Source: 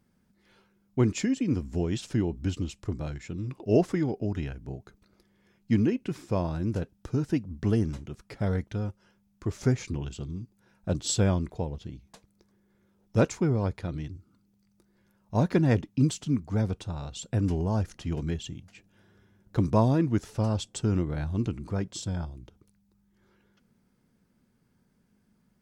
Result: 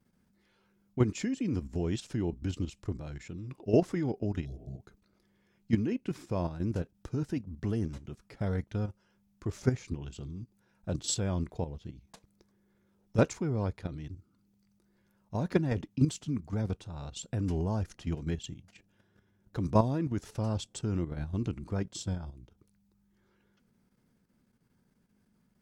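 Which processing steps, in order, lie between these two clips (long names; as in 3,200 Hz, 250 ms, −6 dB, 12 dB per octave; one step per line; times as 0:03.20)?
healed spectral selection 0:04.47–0:04.74, 220–3,300 Hz after
output level in coarse steps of 10 dB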